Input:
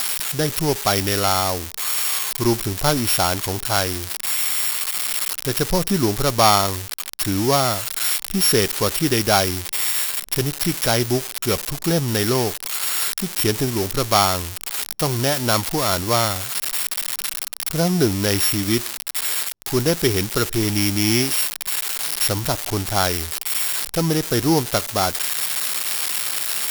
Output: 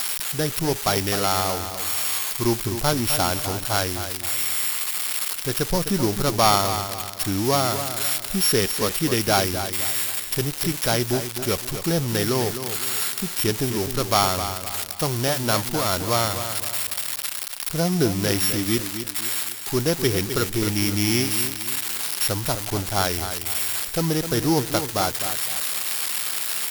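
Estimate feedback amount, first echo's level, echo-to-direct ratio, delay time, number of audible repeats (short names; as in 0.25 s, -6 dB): 38%, -9.5 dB, -9.0 dB, 0.257 s, 4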